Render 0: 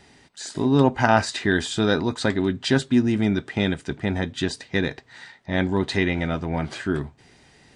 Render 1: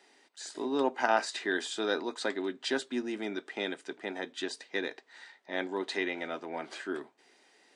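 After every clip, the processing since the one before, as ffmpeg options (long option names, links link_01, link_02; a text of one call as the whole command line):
ffmpeg -i in.wav -af "highpass=frequency=310:width=0.5412,highpass=frequency=310:width=1.3066,volume=-8dB" out.wav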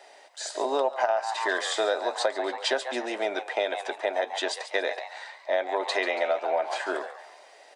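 ffmpeg -i in.wav -filter_complex "[0:a]highpass=frequency=610:width_type=q:width=5.2,asplit=5[link_01][link_02][link_03][link_04][link_05];[link_02]adelay=140,afreqshift=120,volume=-12dB[link_06];[link_03]adelay=280,afreqshift=240,volume=-19.7dB[link_07];[link_04]adelay=420,afreqshift=360,volume=-27.5dB[link_08];[link_05]adelay=560,afreqshift=480,volume=-35.2dB[link_09];[link_01][link_06][link_07][link_08][link_09]amix=inputs=5:normalize=0,acompressor=threshold=-29dB:ratio=10,volume=7.5dB" out.wav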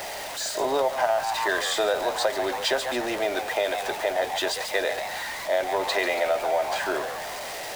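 ffmpeg -i in.wav -af "aeval=exprs='val(0)+0.5*0.0335*sgn(val(0))':channel_layout=same" out.wav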